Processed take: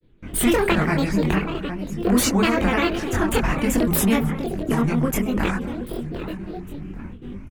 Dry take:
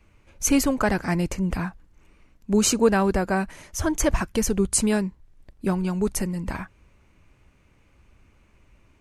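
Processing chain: treble shelf 2.3 kHz -6 dB; in parallel at +3 dB: compression 6:1, threshold -29 dBFS, peak gain reduction 15 dB; on the sum: feedback delay 926 ms, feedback 40%, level -16.5 dB; gate with hold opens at -38 dBFS; ten-band graphic EQ 125 Hz +5 dB, 250 Hz +11 dB, 500 Hz -9 dB, 1 kHz -4 dB, 4 kHz -9 dB, 8 kHz -8 dB; tape speed +20%; granulator, grains 20 per s, spray 33 ms, pitch spread up and down by 7 st; de-hum 53.83 Hz, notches 4; on a send: delay 267 ms -23.5 dB; on the sum: chorus voices 6, 0.97 Hz, delay 23 ms, depth 3 ms; spectrum-flattening compressor 2:1; trim -5 dB

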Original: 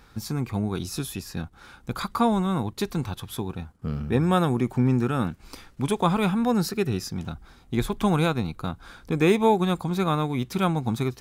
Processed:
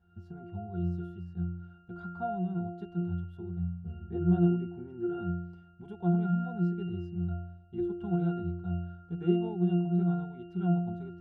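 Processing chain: pitch-class resonator F, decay 0.8 s; trim +9 dB

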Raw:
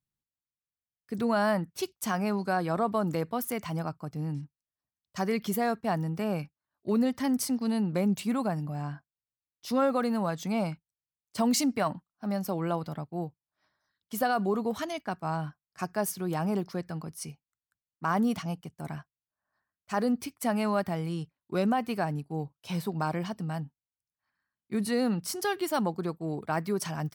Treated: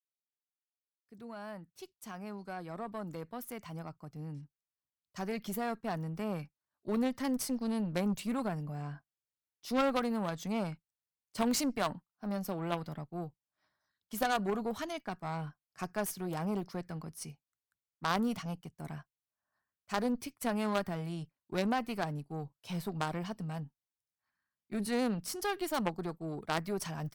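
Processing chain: fade-in on the opening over 7.23 s; Chebyshev shaper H 2 -17 dB, 3 -10 dB, 4 -19 dB, 5 -19 dB, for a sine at -16.5 dBFS

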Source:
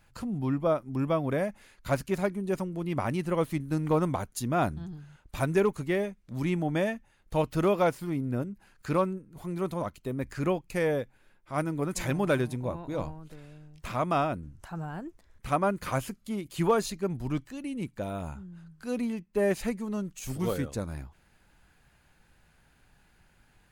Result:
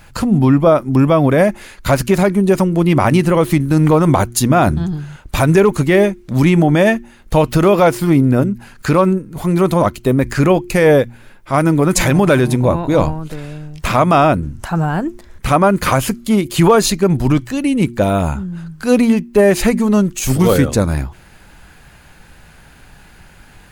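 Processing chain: de-hum 118.4 Hz, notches 3; loudness maximiser +21 dB; trim -1 dB

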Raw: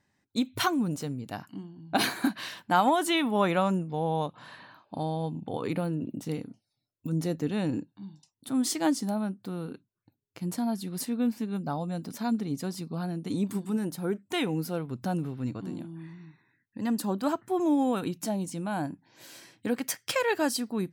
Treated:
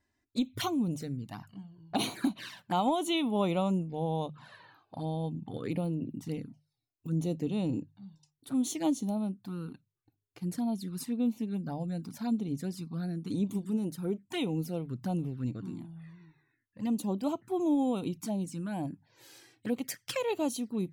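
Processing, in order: bass shelf 87 Hz +10.5 dB; touch-sensitive flanger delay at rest 3 ms, full sweep at -25 dBFS; hum notches 50/100/150 Hz; trim -3 dB

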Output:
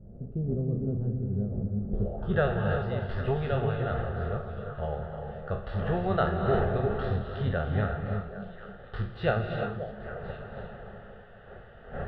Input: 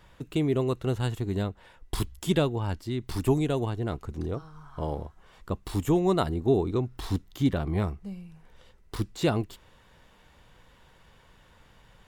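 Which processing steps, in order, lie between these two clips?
spectral sustain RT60 0.38 s; wind noise 490 Hz -39 dBFS; treble shelf 3.5 kHz -6 dB; static phaser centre 1.5 kHz, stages 8; on a send: repeats whose band climbs or falls 267 ms, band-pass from 200 Hz, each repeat 1.4 oct, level -6 dB; on the sum: low-pass sweep 270 Hz -> 2.1 kHz, 1.87–2.46 s; gated-style reverb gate 380 ms rising, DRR 4 dB

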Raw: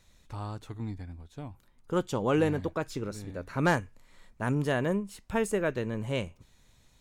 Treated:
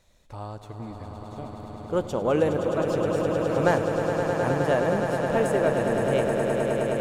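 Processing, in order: peaking EQ 600 Hz +8.5 dB 0.96 oct; on a send: echo with a slow build-up 104 ms, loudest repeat 8, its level -8.5 dB; on the sum: trim -1.5 dB

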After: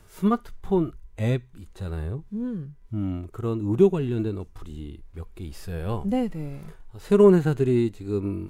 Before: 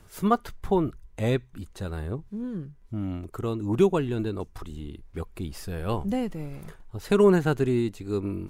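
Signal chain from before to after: harmonic-percussive split percussive -12 dB; trim +3.5 dB

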